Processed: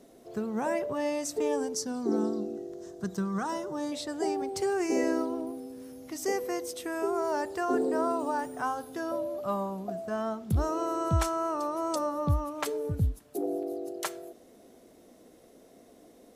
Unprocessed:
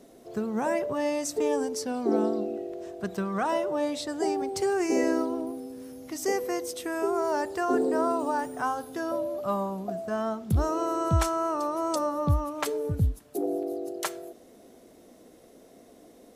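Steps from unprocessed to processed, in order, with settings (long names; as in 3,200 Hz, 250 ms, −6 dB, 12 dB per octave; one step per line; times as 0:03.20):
0:01.74–0:03.92: graphic EQ with 15 bands 160 Hz +6 dB, 630 Hz −8 dB, 2,500 Hz −10 dB, 6,300 Hz +7 dB
level −2.5 dB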